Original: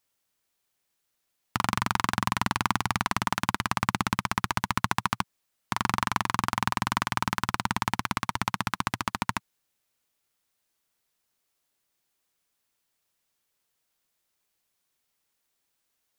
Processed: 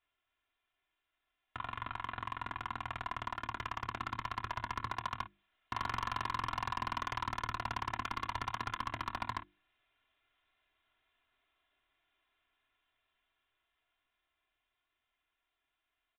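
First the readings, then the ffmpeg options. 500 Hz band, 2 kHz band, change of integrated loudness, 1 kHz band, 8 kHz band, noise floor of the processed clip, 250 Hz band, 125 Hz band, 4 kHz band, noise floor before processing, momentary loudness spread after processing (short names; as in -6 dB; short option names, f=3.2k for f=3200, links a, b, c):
-10.0 dB, -11.5 dB, -11.0 dB, -9.5 dB, -20.5 dB, under -85 dBFS, -17.5 dB, -13.0 dB, -12.5 dB, -78 dBFS, 5 LU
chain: -filter_complex "[0:a]alimiter=limit=-16dB:level=0:latency=1:release=63,equalizer=f=430:w=0.99:g=-5.5,aecho=1:1:2.9:0.82,aresample=8000,asoftclip=type=tanh:threshold=-28dB,aresample=44100,lowpass=f=3k:p=1,equalizer=f=190:w=0.4:g=-5.5,dynaudnorm=f=460:g=17:m=7dB,bandreject=f=50:t=h:w=6,bandreject=f=100:t=h:w=6,bandreject=f=150:t=h:w=6,bandreject=f=200:t=h:w=6,bandreject=f=250:t=h:w=6,bandreject=f=300:t=h:w=6,bandreject=f=350:t=h:w=6,asplit=2[a][b];[b]aecho=0:1:26|54:0.224|0.15[c];[a][c]amix=inputs=2:normalize=0,asoftclip=type=hard:threshold=-28.5dB"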